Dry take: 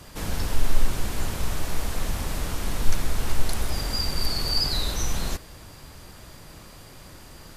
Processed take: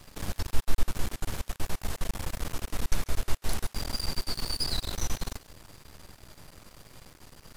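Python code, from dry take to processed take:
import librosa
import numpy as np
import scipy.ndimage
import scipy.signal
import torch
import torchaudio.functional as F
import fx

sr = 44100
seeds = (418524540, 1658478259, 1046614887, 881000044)

y = np.maximum(x, 0.0)
y = fx.echo_thinned(y, sr, ms=141, feedback_pct=18, hz=950.0, wet_db=-18.0)
y = F.gain(torch.from_numpy(y), -2.5).numpy()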